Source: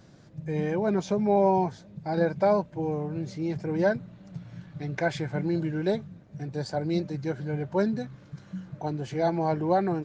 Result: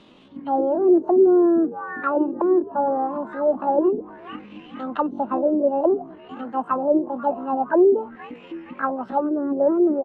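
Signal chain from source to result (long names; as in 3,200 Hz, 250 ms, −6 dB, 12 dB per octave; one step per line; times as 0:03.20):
echo with shifted repeats 458 ms, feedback 46%, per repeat +50 Hz, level −19.5 dB
pitch shifter +10 semitones
envelope-controlled low-pass 370–3,900 Hz down, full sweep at −22.5 dBFS
level +2 dB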